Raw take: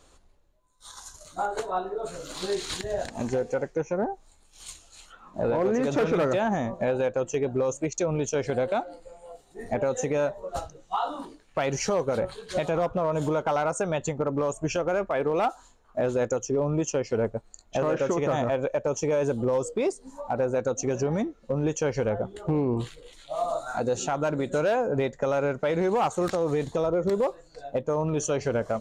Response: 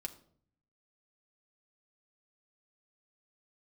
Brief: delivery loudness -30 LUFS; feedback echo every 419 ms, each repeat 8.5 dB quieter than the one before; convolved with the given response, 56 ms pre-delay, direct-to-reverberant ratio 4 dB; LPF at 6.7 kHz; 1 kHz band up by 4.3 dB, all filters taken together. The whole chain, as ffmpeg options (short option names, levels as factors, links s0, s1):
-filter_complex "[0:a]lowpass=6700,equalizer=f=1000:t=o:g=6,aecho=1:1:419|838|1257|1676:0.376|0.143|0.0543|0.0206,asplit=2[s0][s1];[1:a]atrim=start_sample=2205,adelay=56[s2];[s1][s2]afir=irnorm=-1:irlink=0,volume=0.794[s3];[s0][s3]amix=inputs=2:normalize=0,volume=0.501"